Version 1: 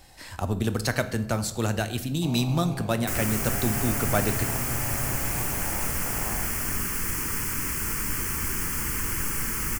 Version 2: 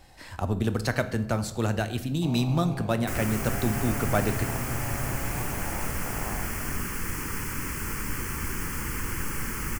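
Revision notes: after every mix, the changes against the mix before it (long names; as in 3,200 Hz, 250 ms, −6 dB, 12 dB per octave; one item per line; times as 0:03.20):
master: add high-shelf EQ 3,800 Hz −7.5 dB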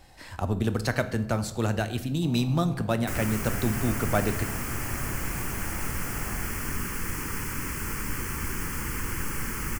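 first sound −7.0 dB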